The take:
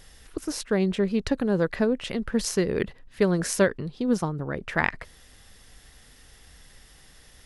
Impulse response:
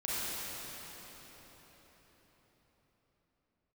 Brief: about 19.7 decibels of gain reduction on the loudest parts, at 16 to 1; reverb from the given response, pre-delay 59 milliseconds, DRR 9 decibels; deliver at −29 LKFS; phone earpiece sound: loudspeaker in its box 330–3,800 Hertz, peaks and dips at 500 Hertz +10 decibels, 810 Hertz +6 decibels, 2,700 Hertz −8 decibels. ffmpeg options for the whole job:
-filter_complex "[0:a]acompressor=threshold=-37dB:ratio=16,asplit=2[link_01][link_02];[1:a]atrim=start_sample=2205,adelay=59[link_03];[link_02][link_03]afir=irnorm=-1:irlink=0,volume=-16dB[link_04];[link_01][link_04]amix=inputs=2:normalize=0,highpass=330,equalizer=frequency=500:width_type=q:width=4:gain=10,equalizer=frequency=810:width_type=q:width=4:gain=6,equalizer=frequency=2700:width_type=q:width=4:gain=-8,lowpass=frequency=3800:width=0.5412,lowpass=frequency=3800:width=1.3066,volume=13dB"

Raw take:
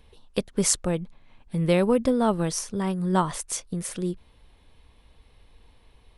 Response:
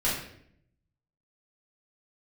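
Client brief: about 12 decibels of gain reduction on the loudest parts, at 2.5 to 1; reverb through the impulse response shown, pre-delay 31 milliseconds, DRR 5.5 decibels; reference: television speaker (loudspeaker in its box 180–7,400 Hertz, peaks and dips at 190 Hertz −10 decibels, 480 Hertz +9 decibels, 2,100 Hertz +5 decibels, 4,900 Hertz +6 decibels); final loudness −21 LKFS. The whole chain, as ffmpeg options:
-filter_complex "[0:a]acompressor=threshold=-35dB:ratio=2.5,asplit=2[link_01][link_02];[1:a]atrim=start_sample=2205,adelay=31[link_03];[link_02][link_03]afir=irnorm=-1:irlink=0,volume=-16dB[link_04];[link_01][link_04]amix=inputs=2:normalize=0,highpass=frequency=180:width=0.5412,highpass=frequency=180:width=1.3066,equalizer=frequency=190:width_type=q:width=4:gain=-10,equalizer=frequency=480:width_type=q:width=4:gain=9,equalizer=frequency=2100:width_type=q:width=4:gain=5,equalizer=frequency=4900:width_type=q:width=4:gain=6,lowpass=frequency=7400:width=0.5412,lowpass=frequency=7400:width=1.3066,volume=12dB"

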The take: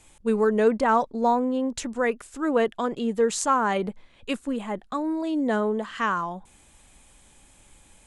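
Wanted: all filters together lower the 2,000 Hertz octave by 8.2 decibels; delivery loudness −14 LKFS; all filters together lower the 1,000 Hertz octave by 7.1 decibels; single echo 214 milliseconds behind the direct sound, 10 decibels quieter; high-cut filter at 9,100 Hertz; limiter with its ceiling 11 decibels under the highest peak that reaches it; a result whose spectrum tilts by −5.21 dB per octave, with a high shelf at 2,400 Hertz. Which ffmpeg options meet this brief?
ffmpeg -i in.wav -af "lowpass=9100,equalizer=frequency=1000:width_type=o:gain=-7,equalizer=frequency=2000:width_type=o:gain=-6.5,highshelf=frequency=2400:gain=-3.5,alimiter=limit=-22dB:level=0:latency=1,aecho=1:1:214:0.316,volume=16.5dB" out.wav

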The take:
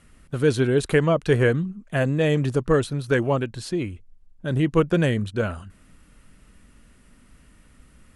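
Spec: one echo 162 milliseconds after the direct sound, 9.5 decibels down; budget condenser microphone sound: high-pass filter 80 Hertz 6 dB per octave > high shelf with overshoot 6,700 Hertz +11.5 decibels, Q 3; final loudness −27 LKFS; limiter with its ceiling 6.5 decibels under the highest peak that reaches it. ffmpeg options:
ffmpeg -i in.wav -af "alimiter=limit=-13.5dB:level=0:latency=1,highpass=frequency=80:poles=1,highshelf=frequency=6700:width_type=q:width=3:gain=11.5,aecho=1:1:162:0.335,volume=-3dB" out.wav

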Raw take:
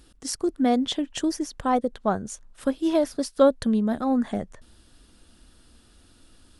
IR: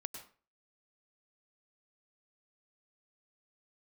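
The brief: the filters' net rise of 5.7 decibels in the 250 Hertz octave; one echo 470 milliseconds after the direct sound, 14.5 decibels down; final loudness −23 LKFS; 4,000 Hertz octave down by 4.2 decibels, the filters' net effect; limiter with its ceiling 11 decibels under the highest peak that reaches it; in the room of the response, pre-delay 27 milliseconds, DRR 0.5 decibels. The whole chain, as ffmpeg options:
-filter_complex "[0:a]equalizer=frequency=250:width_type=o:gain=6.5,equalizer=frequency=4000:width_type=o:gain=-5.5,alimiter=limit=-15dB:level=0:latency=1,aecho=1:1:470:0.188,asplit=2[link_01][link_02];[1:a]atrim=start_sample=2205,adelay=27[link_03];[link_02][link_03]afir=irnorm=-1:irlink=0,volume=2dB[link_04];[link_01][link_04]amix=inputs=2:normalize=0,volume=-1dB"

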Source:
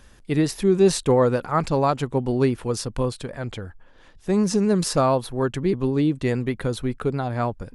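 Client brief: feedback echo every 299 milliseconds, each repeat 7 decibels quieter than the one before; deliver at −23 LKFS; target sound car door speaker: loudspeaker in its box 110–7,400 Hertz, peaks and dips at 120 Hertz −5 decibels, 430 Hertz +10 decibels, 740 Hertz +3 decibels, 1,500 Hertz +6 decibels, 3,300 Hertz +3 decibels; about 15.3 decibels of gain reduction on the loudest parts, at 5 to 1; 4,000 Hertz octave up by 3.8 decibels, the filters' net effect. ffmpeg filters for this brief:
ffmpeg -i in.wav -af "equalizer=frequency=4000:width_type=o:gain=3.5,acompressor=threshold=-31dB:ratio=5,highpass=110,equalizer=frequency=120:width_type=q:width=4:gain=-5,equalizer=frequency=430:width_type=q:width=4:gain=10,equalizer=frequency=740:width_type=q:width=4:gain=3,equalizer=frequency=1500:width_type=q:width=4:gain=6,equalizer=frequency=3300:width_type=q:width=4:gain=3,lowpass=frequency=7400:width=0.5412,lowpass=frequency=7400:width=1.3066,aecho=1:1:299|598|897|1196|1495:0.447|0.201|0.0905|0.0407|0.0183,volume=7.5dB" out.wav

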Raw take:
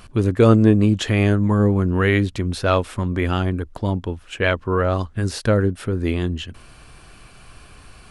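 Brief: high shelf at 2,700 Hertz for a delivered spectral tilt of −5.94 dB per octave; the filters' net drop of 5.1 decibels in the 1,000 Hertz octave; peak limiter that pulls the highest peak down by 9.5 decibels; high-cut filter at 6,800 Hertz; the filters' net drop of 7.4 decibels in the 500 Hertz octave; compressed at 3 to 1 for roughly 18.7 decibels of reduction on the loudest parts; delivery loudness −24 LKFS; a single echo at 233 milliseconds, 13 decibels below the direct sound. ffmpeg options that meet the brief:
ffmpeg -i in.wav -af "lowpass=6800,equalizer=frequency=500:width_type=o:gain=-8.5,equalizer=frequency=1000:width_type=o:gain=-4,highshelf=frequency=2700:gain=-4,acompressor=threshold=-37dB:ratio=3,alimiter=level_in=6.5dB:limit=-24dB:level=0:latency=1,volume=-6.5dB,aecho=1:1:233:0.224,volume=17dB" out.wav

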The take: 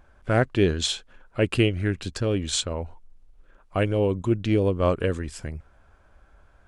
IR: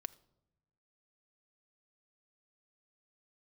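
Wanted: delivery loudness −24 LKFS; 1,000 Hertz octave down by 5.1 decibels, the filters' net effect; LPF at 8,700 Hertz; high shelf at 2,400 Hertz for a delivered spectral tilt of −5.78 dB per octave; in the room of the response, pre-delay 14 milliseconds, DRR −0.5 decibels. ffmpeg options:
-filter_complex "[0:a]lowpass=8700,equalizer=frequency=1000:width_type=o:gain=-6,highshelf=frequency=2400:gain=-7.5,asplit=2[link_01][link_02];[1:a]atrim=start_sample=2205,adelay=14[link_03];[link_02][link_03]afir=irnorm=-1:irlink=0,volume=4dB[link_04];[link_01][link_04]amix=inputs=2:normalize=0"

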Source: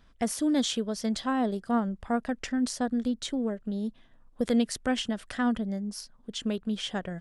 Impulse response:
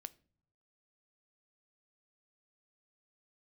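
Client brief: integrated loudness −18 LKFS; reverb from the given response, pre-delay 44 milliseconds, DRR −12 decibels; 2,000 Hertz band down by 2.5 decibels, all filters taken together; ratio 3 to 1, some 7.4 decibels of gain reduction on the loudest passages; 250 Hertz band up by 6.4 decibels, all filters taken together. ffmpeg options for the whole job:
-filter_complex "[0:a]equalizer=frequency=250:width_type=o:gain=7,equalizer=frequency=2000:width_type=o:gain=-3.5,acompressor=threshold=-25dB:ratio=3,asplit=2[link_01][link_02];[1:a]atrim=start_sample=2205,adelay=44[link_03];[link_02][link_03]afir=irnorm=-1:irlink=0,volume=17.5dB[link_04];[link_01][link_04]amix=inputs=2:normalize=0"

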